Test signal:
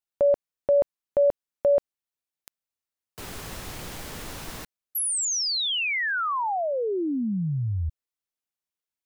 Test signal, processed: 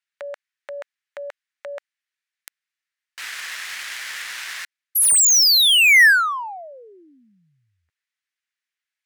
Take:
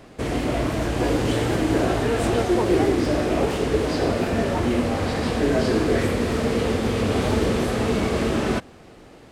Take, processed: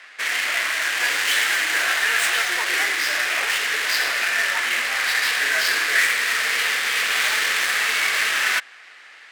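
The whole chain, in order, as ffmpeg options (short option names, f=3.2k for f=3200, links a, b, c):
-af "highpass=f=1.8k:t=q:w=2.8,adynamicsmooth=sensitivity=7:basefreq=4.1k,aemphasis=mode=production:type=50kf,volume=6dB"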